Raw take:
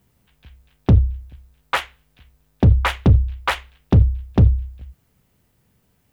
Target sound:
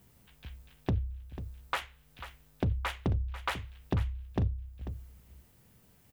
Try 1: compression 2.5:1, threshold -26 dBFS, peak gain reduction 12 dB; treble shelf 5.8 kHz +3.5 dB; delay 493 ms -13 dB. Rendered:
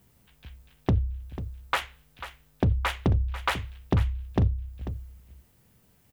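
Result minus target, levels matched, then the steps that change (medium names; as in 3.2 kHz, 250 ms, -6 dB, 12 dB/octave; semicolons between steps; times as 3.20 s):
compression: peak gain reduction -6.5 dB
change: compression 2.5:1, threshold -37 dBFS, peak gain reduction 18.5 dB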